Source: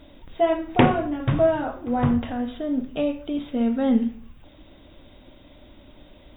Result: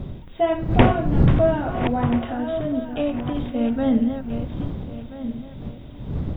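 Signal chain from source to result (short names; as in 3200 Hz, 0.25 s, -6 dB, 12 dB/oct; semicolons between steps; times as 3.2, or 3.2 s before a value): regenerating reverse delay 0.666 s, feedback 47%, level -8 dB; wind noise 150 Hz -26 dBFS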